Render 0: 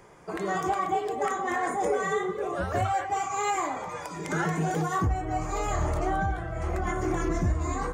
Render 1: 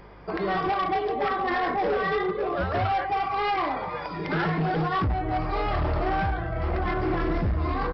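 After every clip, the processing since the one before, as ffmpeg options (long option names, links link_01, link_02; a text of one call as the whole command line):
ffmpeg -i in.wav -af "aresample=11025,asoftclip=type=hard:threshold=-25.5dB,aresample=44100,aeval=exprs='val(0)+0.00224*(sin(2*PI*50*n/s)+sin(2*PI*2*50*n/s)/2+sin(2*PI*3*50*n/s)/3+sin(2*PI*4*50*n/s)/4+sin(2*PI*5*50*n/s)/5)':channel_layout=same,volume=4dB" out.wav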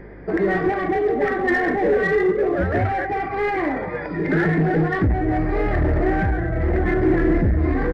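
ffmpeg -i in.wav -filter_complex "[0:a]firequalizer=gain_entry='entry(160,0);entry(290,5);entry(1100,-14);entry(1800,4);entry(2800,-16)':delay=0.05:min_phase=1,asplit=2[link_01][link_02];[link_02]asoftclip=type=hard:threshold=-28dB,volume=-8.5dB[link_03];[link_01][link_03]amix=inputs=2:normalize=0,volume=5dB" out.wav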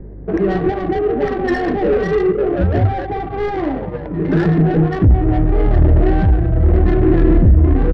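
ffmpeg -i in.wav -filter_complex "[0:a]lowshelf=frequency=180:gain=9,acrossover=split=120[link_01][link_02];[link_02]adynamicsmooth=sensitivity=0.5:basefreq=510[link_03];[link_01][link_03]amix=inputs=2:normalize=0,volume=2dB" out.wav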